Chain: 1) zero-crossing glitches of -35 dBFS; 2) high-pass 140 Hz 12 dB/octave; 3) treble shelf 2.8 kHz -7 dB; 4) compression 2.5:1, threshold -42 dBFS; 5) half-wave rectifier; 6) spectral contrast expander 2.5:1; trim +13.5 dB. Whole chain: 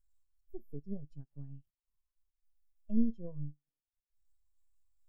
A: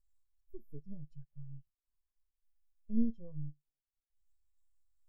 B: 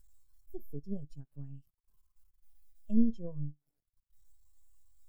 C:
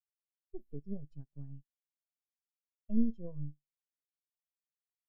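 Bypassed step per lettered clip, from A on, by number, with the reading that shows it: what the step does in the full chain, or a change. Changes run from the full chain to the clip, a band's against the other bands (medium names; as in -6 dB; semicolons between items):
2, loudness change -1.5 LU; 3, momentary loudness spread change +1 LU; 1, distortion -9 dB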